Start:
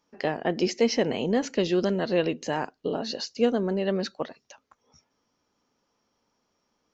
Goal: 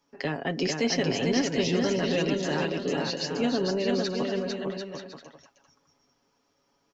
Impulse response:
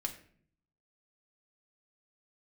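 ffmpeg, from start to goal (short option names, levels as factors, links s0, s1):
-filter_complex "[0:a]aecho=1:1:7.2:0.58,acrossover=split=320|1300[s0][s1][s2];[s1]alimiter=level_in=1.33:limit=0.0631:level=0:latency=1,volume=0.75[s3];[s0][s3][s2]amix=inputs=3:normalize=0,aecho=1:1:450|742.5|932.6|1056|1137:0.631|0.398|0.251|0.158|0.1"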